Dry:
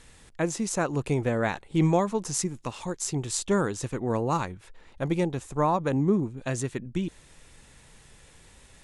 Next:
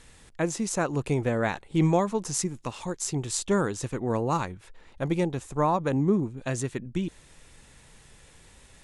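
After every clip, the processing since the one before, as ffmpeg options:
-af anull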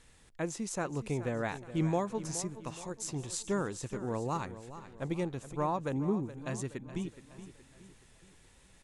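-af "aecho=1:1:421|842|1263|1684:0.211|0.0972|0.0447|0.0206,volume=0.398"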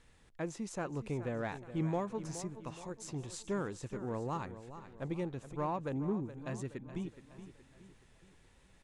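-filter_complex "[0:a]aemphasis=mode=reproduction:type=cd,asplit=2[s0][s1];[s1]asoftclip=type=tanh:threshold=0.0282,volume=0.596[s2];[s0][s2]amix=inputs=2:normalize=0,volume=0.473"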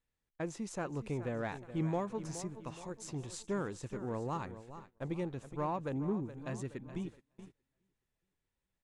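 -af "agate=range=0.0631:threshold=0.00355:ratio=16:detection=peak"

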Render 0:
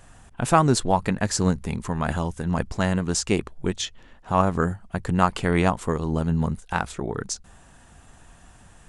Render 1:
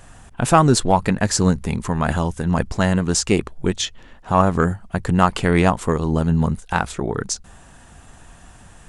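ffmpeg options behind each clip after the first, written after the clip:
-af "acontrast=35"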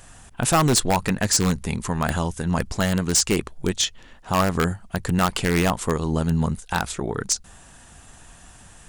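-filter_complex "[0:a]highshelf=f=2600:g=7.5,asplit=2[s0][s1];[s1]aeval=exprs='(mod(2.11*val(0)+1,2)-1)/2.11':c=same,volume=0.562[s2];[s0][s2]amix=inputs=2:normalize=0,volume=0.422"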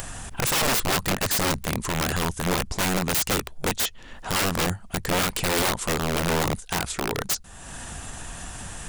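-af "acompressor=mode=upward:threshold=0.0562:ratio=2.5,aeval=exprs='(mod(7.5*val(0)+1,2)-1)/7.5':c=same"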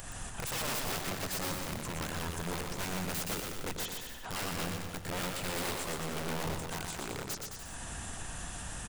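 -filter_complex "[0:a]alimiter=level_in=1.12:limit=0.0631:level=0:latency=1:release=77,volume=0.891,asplit=2[s0][s1];[s1]aecho=0:1:120|216|292.8|354.2|403.4:0.631|0.398|0.251|0.158|0.1[s2];[s0][s2]amix=inputs=2:normalize=0,volume=0.473"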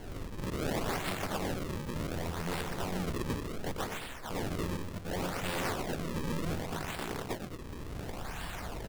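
-af "acrusher=samples=35:mix=1:aa=0.000001:lfo=1:lforange=56:lforate=0.68,volume=1.19"

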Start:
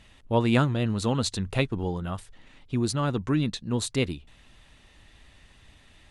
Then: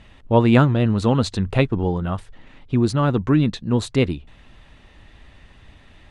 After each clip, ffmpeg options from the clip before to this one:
-af "lowpass=f=2000:p=1,volume=2.51"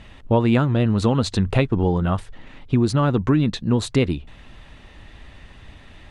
-af "acompressor=threshold=0.126:ratio=5,volume=1.58"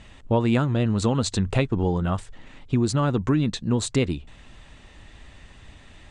-af "lowpass=f=7900:t=q:w=3,volume=0.668"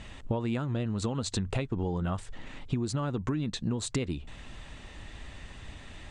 -af "acompressor=threshold=0.0355:ratio=10,volume=1.26"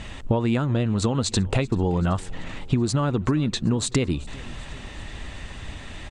-af "aecho=1:1:384|768|1152|1536:0.075|0.0442|0.0261|0.0154,volume=2.66"

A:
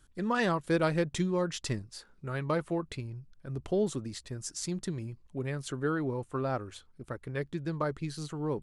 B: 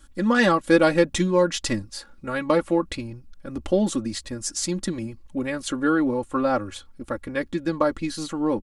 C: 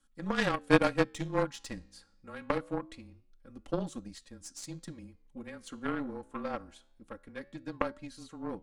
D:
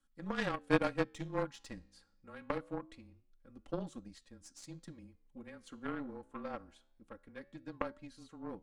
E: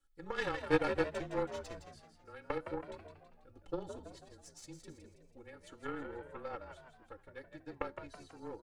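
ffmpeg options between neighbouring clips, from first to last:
-af "aecho=1:1:3.6:0.84,volume=2.51"
-af "afreqshift=-26,flanger=delay=9.2:depth=8.9:regen=-88:speed=0.25:shape=triangular,aeval=exprs='0.355*(cos(1*acos(clip(val(0)/0.355,-1,1)))-cos(1*PI/2))+0.0398*(cos(2*acos(clip(val(0)/0.355,-1,1)))-cos(2*PI/2))+0.1*(cos(3*acos(clip(val(0)/0.355,-1,1)))-cos(3*PI/2))':c=same,volume=1.33"
-af "highshelf=f=5200:g=-5.5,volume=0.501"
-filter_complex "[0:a]aecho=1:1:2.3:0.75,asplit=2[s0][s1];[s1]asplit=5[s2][s3][s4][s5][s6];[s2]adelay=163,afreqshift=74,volume=0.376[s7];[s3]adelay=326,afreqshift=148,volume=0.166[s8];[s4]adelay=489,afreqshift=222,volume=0.0724[s9];[s5]adelay=652,afreqshift=296,volume=0.032[s10];[s6]adelay=815,afreqshift=370,volume=0.0141[s11];[s7][s8][s9][s10][s11]amix=inputs=5:normalize=0[s12];[s0][s12]amix=inputs=2:normalize=0,volume=0.75"

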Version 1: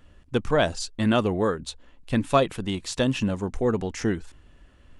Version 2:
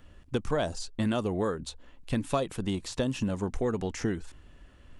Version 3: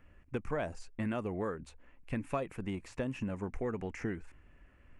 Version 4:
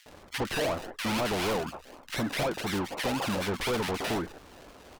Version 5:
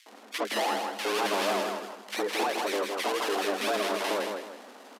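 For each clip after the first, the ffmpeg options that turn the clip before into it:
-filter_complex "[0:a]acrossover=split=1300|4700[s0][s1][s2];[s0]acompressor=threshold=0.0501:ratio=4[s3];[s1]acompressor=threshold=0.00631:ratio=4[s4];[s2]acompressor=threshold=0.00794:ratio=4[s5];[s3][s4][s5]amix=inputs=3:normalize=0"
-af "highshelf=f=2900:t=q:w=3:g=-7,volume=0.447"
-filter_complex "[0:a]acrusher=samples=32:mix=1:aa=0.000001:lfo=1:lforange=19.2:lforate=4,acrossover=split=1900[s0][s1];[s0]adelay=60[s2];[s2][s1]amix=inputs=2:normalize=0,asplit=2[s3][s4];[s4]highpass=f=720:p=1,volume=25.1,asoftclip=type=tanh:threshold=0.0891[s5];[s3][s5]amix=inputs=2:normalize=0,lowpass=f=6500:p=1,volume=0.501"
-af "afreqshift=200,aecho=1:1:160|320|480|640:0.562|0.186|0.0612|0.0202,aresample=32000,aresample=44100"

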